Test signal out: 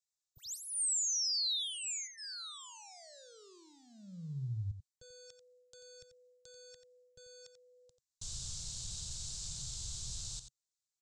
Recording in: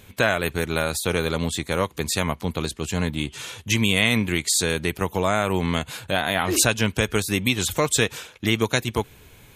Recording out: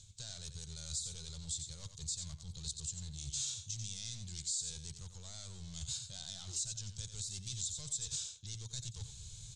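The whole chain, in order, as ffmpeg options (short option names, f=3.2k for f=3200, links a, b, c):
-filter_complex "[0:a]highshelf=f=3.7k:g=-5.5,areverse,acompressor=threshold=-33dB:ratio=8,areverse,bandreject=f=1.9k:w=7.2,asoftclip=type=hard:threshold=-36dB,firequalizer=gain_entry='entry(130,0);entry(260,-28);entry(370,-22);entry(2400,-17);entry(3800,6);entry(7500,15);entry(13000,-29)':delay=0.05:min_phase=1,asplit=2[a][b];[b]aecho=0:1:89:0.316[c];[a][c]amix=inputs=2:normalize=0,alimiter=level_in=4.5dB:limit=-24dB:level=0:latency=1:release=139,volume=-4.5dB"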